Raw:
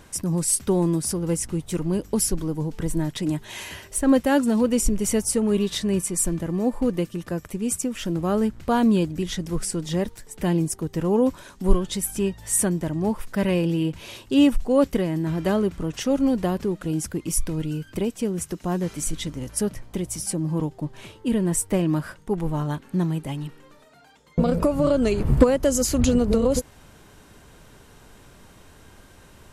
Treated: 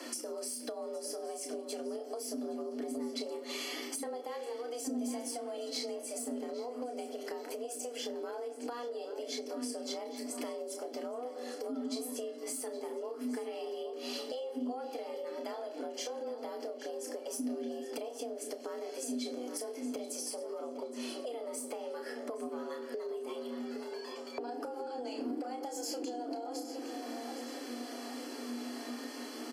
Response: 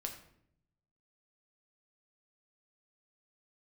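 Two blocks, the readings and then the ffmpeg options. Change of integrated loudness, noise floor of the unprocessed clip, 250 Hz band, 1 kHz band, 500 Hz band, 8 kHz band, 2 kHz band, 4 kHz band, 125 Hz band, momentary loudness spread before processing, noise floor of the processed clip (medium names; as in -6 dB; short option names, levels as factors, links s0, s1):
-16.0 dB, -51 dBFS, -18.0 dB, -10.5 dB, -12.5 dB, -15.0 dB, -12.5 dB, -8.0 dB, under -40 dB, 9 LU, -45 dBFS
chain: -filter_complex "[0:a]acrossover=split=660[s0][s1];[s1]asoftclip=type=tanh:threshold=0.112[s2];[s0][s2]amix=inputs=2:normalize=0,asplit=2[s3][s4];[s4]adelay=31,volume=0.473[s5];[s3][s5]amix=inputs=2:normalize=0,asplit=2[s6][s7];[1:a]atrim=start_sample=2205[s8];[s7][s8]afir=irnorm=-1:irlink=0,volume=1.26[s9];[s6][s9]amix=inputs=2:normalize=0,flanger=delay=2.5:depth=2.6:regen=-46:speed=0.19:shape=triangular,asuperstop=centerf=3500:order=20:qfactor=7.8,afreqshift=240,alimiter=limit=0.282:level=0:latency=1:release=200,acompressor=threshold=0.0158:ratio=2.5,asplit=2[s10][s11];[s11]adelay=816,lowpass=f=4800:p=1,volume=0.251,asplit=2[s12][s13];[s13]adelay=816,lowpass=f=4800:p=1,volume=0.48,asplit=2[s14][s15];[s15]adelay=816,lowpass=f=4800:p=1,volume=0.48,asplit=2[s16][s17];[s17]adelay=816,lowpass=f=4800:p=1,volume=0.48,asplit=2[s18][s19];[s19]adelay=816,lowpass=f=4800:p=1,volume=0.48[s20];[s10][s12][s14][s16][s18][s20]amix=inputs=6:normalize=0,acrossover=split=210[s21][s22];[s22]acompressor=threshold=0.01:ratio=6[s23];[s21][s23]amix=inputs=2:normalize=0,equalizer=f=4600:w=2.3:g=11,volume=1.12"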